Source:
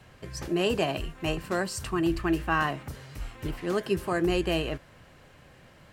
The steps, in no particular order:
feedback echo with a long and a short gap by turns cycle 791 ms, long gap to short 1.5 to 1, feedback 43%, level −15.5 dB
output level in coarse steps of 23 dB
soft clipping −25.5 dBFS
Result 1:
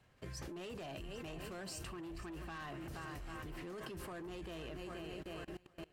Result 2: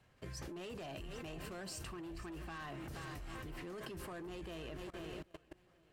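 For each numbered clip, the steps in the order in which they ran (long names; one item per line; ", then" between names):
feedback echo with a long and a short gap by turns, then soft clipping, then output level in coarse steps
soft clipping, then feedback echo with a long and a short gap by turns, then output level in coarse steps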